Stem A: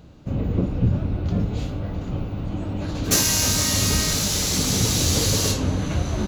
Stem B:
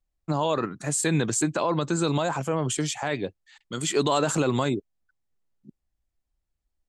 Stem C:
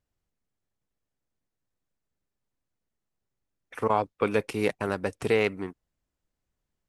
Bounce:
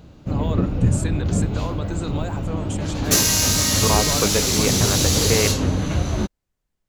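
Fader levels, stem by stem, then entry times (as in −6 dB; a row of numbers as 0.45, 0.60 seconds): +2.0, −6.5, +2.5 decibels; 0.00, 0.00, 0.00 seconds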